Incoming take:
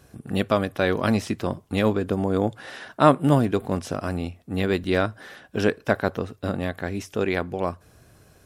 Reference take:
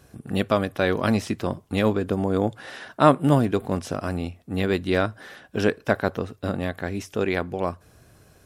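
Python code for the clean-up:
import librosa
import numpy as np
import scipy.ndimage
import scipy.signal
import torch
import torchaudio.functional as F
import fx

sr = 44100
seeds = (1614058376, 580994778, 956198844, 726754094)

y = fx.fix_interpolate(x, sr, at_s=(2.92, 4.84), length_ms=2.4)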